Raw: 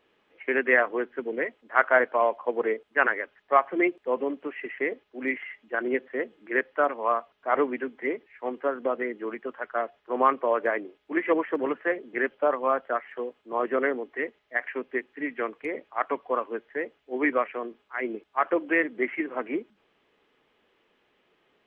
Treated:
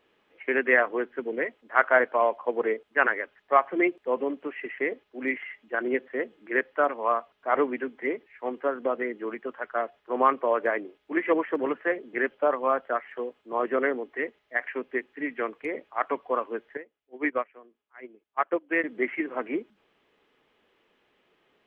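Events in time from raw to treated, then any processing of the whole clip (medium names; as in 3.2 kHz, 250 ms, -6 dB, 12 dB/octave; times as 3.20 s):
16.77–18.84 s: upward expansion 2.5:1, over -33 dBFS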